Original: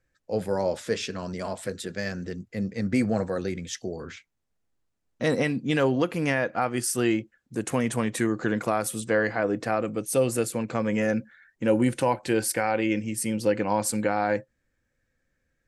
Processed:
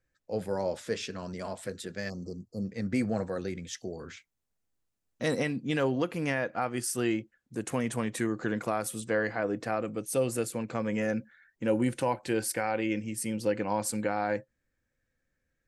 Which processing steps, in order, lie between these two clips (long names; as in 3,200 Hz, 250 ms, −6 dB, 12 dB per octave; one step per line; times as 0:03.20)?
0:02.09–0:02.65: time-frequency box erased 1,300–4,100 Hz
0:03.78–0:05.42: high-shelf EQ 7,800 Hz → 4,500 Hz +7 dB
level −5 dB